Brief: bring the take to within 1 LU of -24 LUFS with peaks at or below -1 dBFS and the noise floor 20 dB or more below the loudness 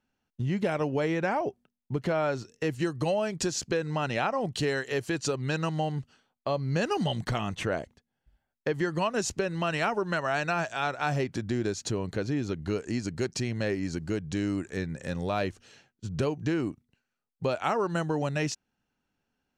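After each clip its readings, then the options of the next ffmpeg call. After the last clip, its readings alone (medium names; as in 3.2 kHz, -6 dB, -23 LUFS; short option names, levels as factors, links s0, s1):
loudness -30.5 LUFS; peak level -14.5 dBFS; loudness target -24.0 LUFS
-> -af "volume=2.11"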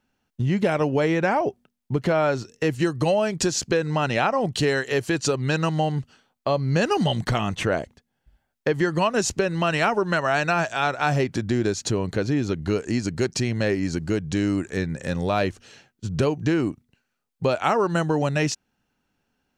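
loudness -24.0 LUFS; peak level -8.0 dBFS; noise floor -77 dBFS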